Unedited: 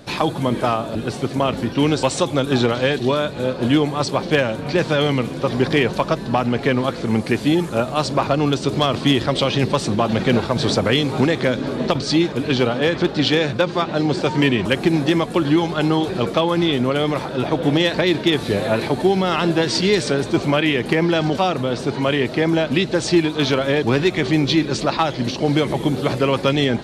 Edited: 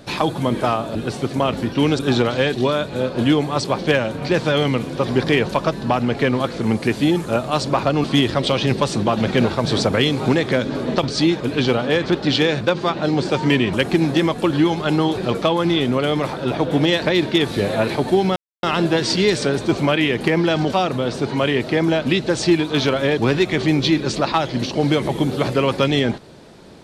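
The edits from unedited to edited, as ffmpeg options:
-filter_complex "[0:a]asplit=4[a][b][c][d];[a]atrim=end=1.992[e];[b]atrim=start=2.428:end=8.482[f];[c]atrim=start=8.958:end=19.28,asetpts=PTS-STARTPTS,afade=t=out:st=10.318:d=0.004:c=hsin,apad=pad_dur=0.27[g];[d]atrim=start=19.28,asetpts=PTS-STARTPTS,afade=t=in:d=0.004:c=hsin[h];[e][f]acrossfade=d=0.004:c1=hsin:c2=hsin[i];[g][h]concat=n=2:v=0:a=1[j];[i][j]acrossfade=d=0.004:c1=hsin:c2=hsin"

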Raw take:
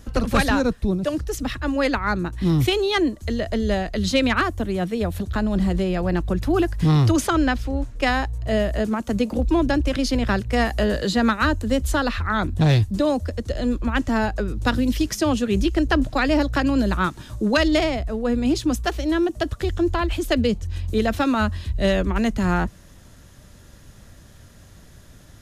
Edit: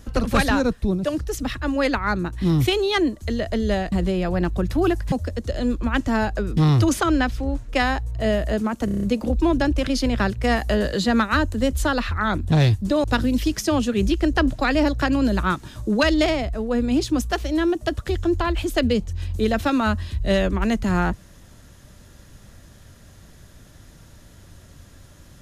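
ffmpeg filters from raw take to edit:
-filter_complex "[0:a]asplit=11[a][b][c][d][e][f][g][h][i][j][k];[a]atrim=end=3.922[l];[b]atrim=start=5.638:end=6.842[m];[c]atrim=start=13.128:end=14.582[n];[d]atrim=start=6.838:end=9.152[o];[e]atrim=start=9.118:end=9.152[p];[f]atrim=start=9.118:end=9.152[q];[g]atrim=start=9.118:end=9.152[r];[h]atrim=start=9.118:end=9.152[s];[i]atrim=start=9.118:end=9.152[t];[j]atrim=start=9.118:end=13.132[u];[k]atrim=start=14.578[v];[l][m]acrossfade=d=0.004:c1=hsin:c2=hsin[w];[w][n]acrossfade=d=0.004:c1=hsin:c2=hsin[x];[x][o]acrossfade=d=0.004:c1=hsin:c2=hsin[y];[y][p]acrossfade=d=0.004:c1=hsin:c2=hsin[z];[z][q]acrossfade=d=0.004:c1=hsin:c2=hsin[aa];[aa][r]acrossfade=d=0.004:c1=hsin:c2=hsin[ab];[ab][s]acrossfade=d=0.004:c1=hsin:c2=hsin[ac];[ac][t]acrossfade=d=0.004:c1=hsin:c2=hsin[ad];[ad][u]acrossfade=d=0.004:c1=hsin:c2=hsin[ae];[ae][v]acrossfade=d=0.004:c1=hsin:c2=hsin"

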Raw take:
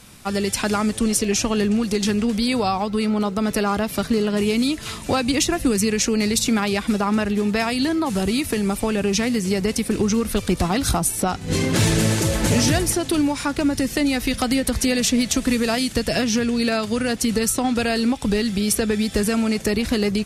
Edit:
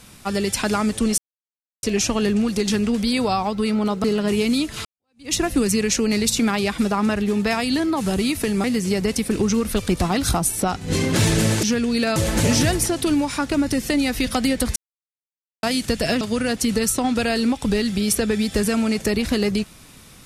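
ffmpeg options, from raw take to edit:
-filter_complex "[0:a]asplit=10[a][b][c][d][e][f][g][h][i][j];[a]atrim=end=1.18,asetpts=PTS-STARTPTS,afade=t=out:st=1.176:d=0.004:c=hsin,apad=pad_dur=0.65[k];[b]atrim=start=1.18:end=3.392,asetpts=PTS-STARTPTS,afade=t=in:d=0.004:c=hsin[l];[c]atrim=start=4.128:end=4.94,asetpts=PTS-STARTPTS,afade=t=out:st=0.808:d=0.004:c=hsin[m];[d]atrim=start=4.94:end=8.732,asetpts=PTS-STARTPTS,afade=t=in:d=0.49:c=exp[n];[e]atrim=start=9.238:end=12.232[o];[f]atrim=start=16.278:end=16.812[p];[g]atrim=start=12.228:end=14.83,asetpts=PTS-STARTPTS,afade=t=out:st=2.598:d=0.004:c=hsin[q];[h]atrim=start=14.83:end=15.7,asetpts=PTS-STARTPTS,volume=0[r];[i]atrim=start=15.7:end=16.282,asetpts=PTS-STARTPTS,afade=t=in:d=0.004:c=hsin[s];[j]atrim=start=16.808[t];[k][l]concat=n=2:v=0:a=1[u];[m][n]concat=n=2:v=0:a=1[v];[u][v]acrossfade=d=0.004:c1=hsin:c2=hsin[w];[w][o]acrossfade=d=0.004:c1=hsin:c2=hsin[x];[x][p]acrossfade=d=0.004:c1=hsin:c2=hsin[y];[q][r][s]concat=n=3:v=0:a=1[z];[y][z]acrossfade=d=0.004:c1=hsin:c2=hsin[aa];[aa][t]acrossfade=d=0.004:c1=hsin:c2=hsin"

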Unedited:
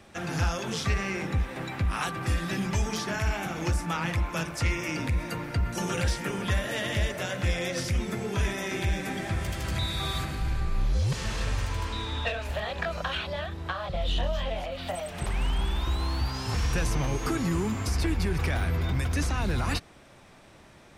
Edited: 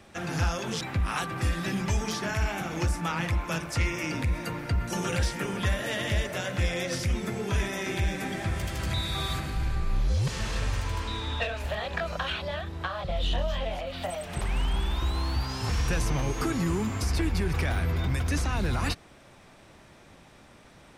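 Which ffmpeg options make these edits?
-filter_complex "[0:a]asplit=2[a][b];[a]atrim=end=0.812[c];[b]atrim=start=1.658[d];[c][d]acrossfade=d=0.004:c1=hsin:c2=hsin"

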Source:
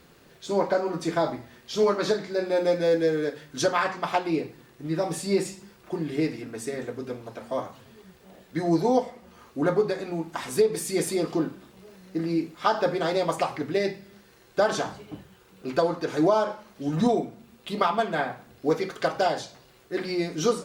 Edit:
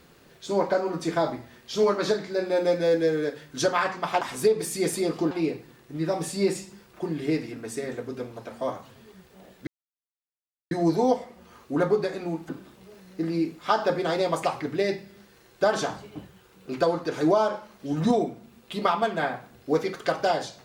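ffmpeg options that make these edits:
-filter_complex "[0:a]asplit=5[a][b][c][d][e];[a]atrim=end=4.212[f];[b]atrim=start=10.348:end=11.452[g];[c]atrim=start=4.208:end=8.57,asetpts=PTS-STARTPTS,afade=t=out:st=4.358:d=0.004:c=hsin,apad=pad_dur=1.04[h];[d]atrim=start=8.57:end=10.352,asetpts=PTS-STARTPTS,afade=t=in:d=0.004:c=hsin[i];[e]atrim=start=11.448[j];[f][g]acrossfade=d=0.004:c1=hsin:c2=hsin[k];[h][i]concat=n=2:v=0:a=1[l];[k][l]acrossfade=d=0.004:c1=hsin:c2=hsin[m];[m][j]acrossfade=d=0.004:c1=hsin:c2=hsin"

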